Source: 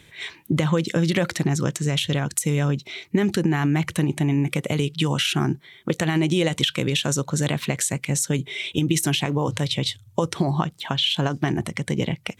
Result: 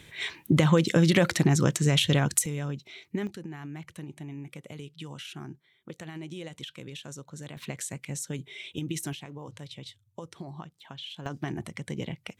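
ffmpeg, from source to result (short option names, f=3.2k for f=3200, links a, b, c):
-af "asetnsamples=n=441:p=0,asendcmd='2.46 volume volume -11dB;3.27 volume volume -19dB;7.57 volume volume -12dB;9.13 volume volume -19dB;11.26 volume volume -10.5dB',volume=0dB"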